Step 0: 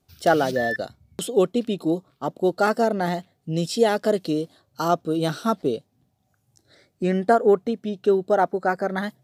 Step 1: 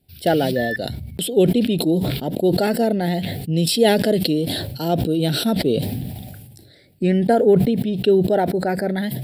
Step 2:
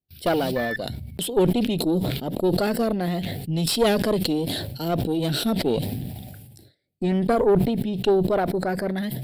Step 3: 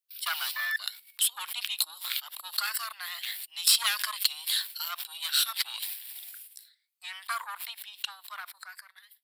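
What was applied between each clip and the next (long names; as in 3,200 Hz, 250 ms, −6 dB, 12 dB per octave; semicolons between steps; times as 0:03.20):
bass and treble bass +3 dB, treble +6 dB; phaser with its sweep stopped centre 2,800 Hz, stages 4; level that may fall only so fast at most 32 dB per second; level +3.5 dB
noise gate with hold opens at −36 dBFS; tube saturation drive 11 dB, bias 0.65
fade-out on the ending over 1.74 s; elliptic high-pass filter 1,100 Hz, stop band 60 dB; high-shelf EQ 5,000 Hz +8 dB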